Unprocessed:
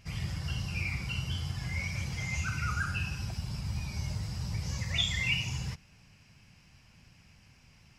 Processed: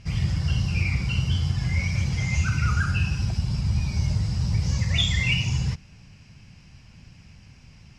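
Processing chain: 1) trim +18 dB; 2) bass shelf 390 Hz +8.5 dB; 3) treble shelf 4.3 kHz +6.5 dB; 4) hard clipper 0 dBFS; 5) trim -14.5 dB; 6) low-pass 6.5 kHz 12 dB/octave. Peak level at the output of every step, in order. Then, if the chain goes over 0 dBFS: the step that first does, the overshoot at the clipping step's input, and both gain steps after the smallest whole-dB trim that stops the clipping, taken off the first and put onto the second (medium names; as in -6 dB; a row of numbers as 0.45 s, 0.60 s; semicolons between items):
+1.0 dBFS, +3.0 dBFS, +4.5 dBFS, 0.0 dBFS, -14.5 dBFS, -14.0 dBFS; step 1, 4.5 dB; step 1 +13 dB, step 5 -9.5 dB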